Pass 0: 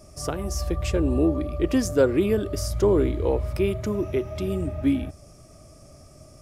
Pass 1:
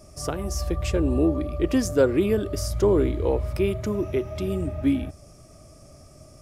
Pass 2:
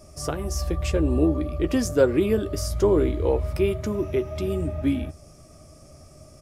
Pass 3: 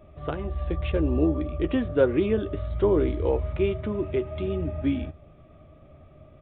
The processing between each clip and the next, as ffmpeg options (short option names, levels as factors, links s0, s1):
-af anull
-filter_complex "[0:a]asplit=2[s0][s1];[s1]adelay=13,volume=0.282[s2];[s0][s2]amix=inputs=2:normalize=0"
-af "aresample=8000,aresample=44100,volume=0.794"